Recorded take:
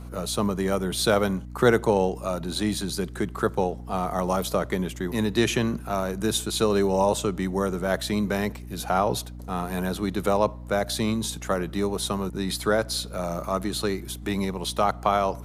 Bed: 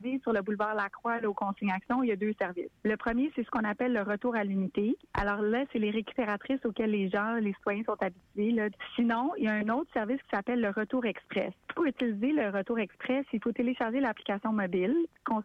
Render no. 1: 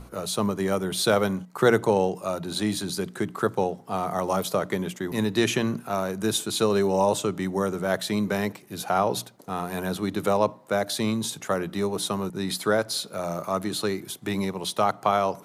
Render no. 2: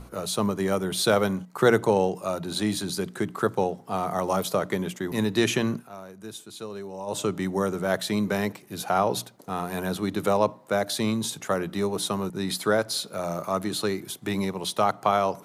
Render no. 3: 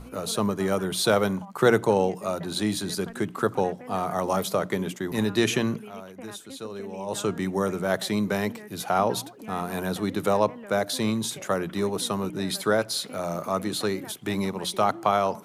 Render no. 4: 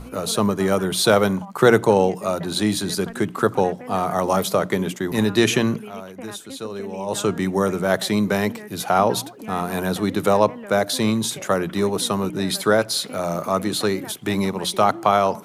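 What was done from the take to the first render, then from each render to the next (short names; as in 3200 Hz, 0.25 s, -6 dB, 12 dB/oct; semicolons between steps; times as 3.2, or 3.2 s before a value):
notches 60/120/180/240/300 Hz
5.73–7.22 dip -14.5 dB, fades 0.16 s
add bed -13.5 dB
gain +5.5 dB; limiter -2 dBFS, peak gain reduction 1 dB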